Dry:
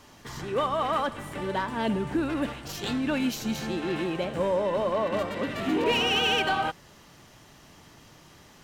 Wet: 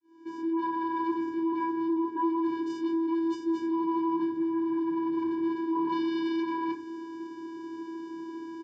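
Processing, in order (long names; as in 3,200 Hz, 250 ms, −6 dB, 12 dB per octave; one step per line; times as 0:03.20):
fade in at the beginning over 1.05 s
low-shelf EQ 390 Hz +7 dB
reversed playback
downward compressor 12 to 1, threshold −36 dBFS, peak gain reduction 18.5 dB
reversed playback
channel vocoder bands 8, square 329 Hz
sine wavefolder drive 8 dB, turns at −28 dBFS
high-frequency loss of the air 73 metres
double-tracking delay 12 ms −11 dB
on a send: convolution reverb RT60 0.45 s, pre-delay 3 ms, DRR 3 dB
on the sum: level −2 dB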